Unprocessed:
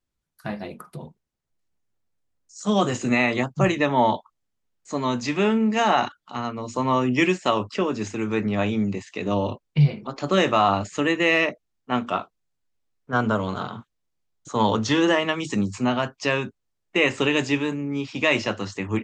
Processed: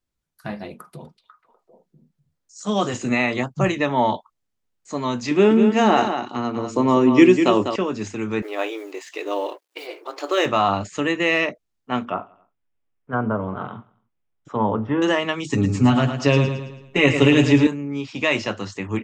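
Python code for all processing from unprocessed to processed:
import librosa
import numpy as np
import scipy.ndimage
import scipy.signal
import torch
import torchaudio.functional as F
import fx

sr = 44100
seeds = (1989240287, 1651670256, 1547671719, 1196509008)

y = fx.chain(x, sr, fx.low_shelf(hz=160.0, db=-5.0),
    fx.echo_stepped(ms=247, hz=3900.0, octaves=-1.4, feedback_pct=70, wet_db=-3.0), at=(0.74, 2.94))
y = fx.chain(y, sr, fx.peak_eq(hz=330.0, db=10.5, octaves=1.1),
    fx.echo_single(ms=198, db=-7.5), at=(5.31, 7.76))
y = fx.chain(y, sr, fx.law_mismatch(coded='mu'),
    fx.brickwall_highpass(low_hz=290.0), at=(8.42, 10.46))
y = fx.chain(y, sr, fx.env_lowpass_down(base_hz=1300.0, full_db=-21.5),
    fx.savgol(points=25),
    fx.echo_feedback(ms=90, feedback_pct=52, wet_db=-23.5), at=(12.05, 15.02))
y = fx.chain(y, sr, fx.low_shelf(hz=230.0, db=11.0),
    fx.comb(ms=7.1, depth=0.72),
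    fx.echo_feedback(ms=110, feedback_pct=45, wet_db=-8), at=(15.52, 17.67))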